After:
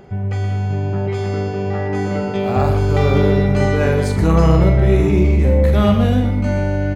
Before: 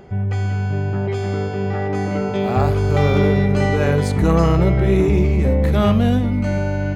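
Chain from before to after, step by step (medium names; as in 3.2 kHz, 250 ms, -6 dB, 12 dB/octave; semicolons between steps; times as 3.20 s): doubling 44 ms -8 dB; echo from a far wall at 21 m, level -9 dB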